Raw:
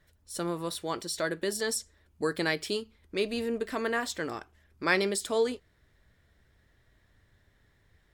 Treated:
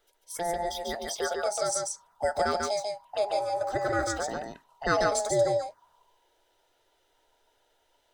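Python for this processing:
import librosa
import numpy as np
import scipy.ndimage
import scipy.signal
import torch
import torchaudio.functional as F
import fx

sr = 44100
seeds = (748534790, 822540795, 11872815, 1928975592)

y = fx.band_invert(x, sr, width_hz=1000)
y = fx.low_shelf(y, sr, hz=190.0, db=-9.5, at=(0.61, 1.66))
y = fx.env_phaser(y, sr, low_hz=170.0, high_hz=2900.0, full_db=-30.0)
y = y + 10.0 ** (-3.5 / 20.0) * np.pad(y, (int(143 * sr / 1000.0), 0))[:len(y)]
y = y * librosa.db_to_amplitude(2.5)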